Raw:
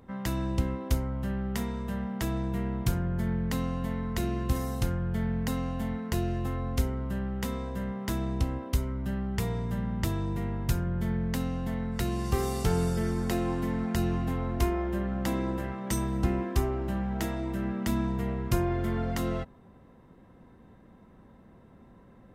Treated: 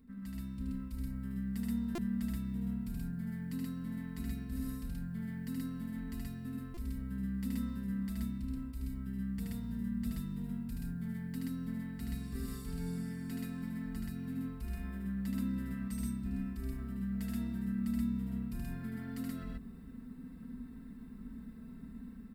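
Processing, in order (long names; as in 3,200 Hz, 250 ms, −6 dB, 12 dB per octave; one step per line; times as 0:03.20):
log-companded quantiser 8 bits
guitar amp tone stack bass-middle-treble 6-0-2
comb filter 4.5 ms, depth 74%
reversed playback
downward compressor 8 to 1, threshold −54 dBFS, peak gain reduction 22 dB
reversed playback
thirty-one-band graphic EQ 250 Hz +12 dB, 3,150 Hz −7 dB, 6,300 Hz −12 dB
automatic gain control gain up to 5.5 dB
on a send: loudspeakers that aren't time-aligned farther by 26 metres −2 dB, 44 metres 0 dB
on the sum: buffer that repeats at 0:01.95/0:06.74, samples 128, times 10
level +8 dB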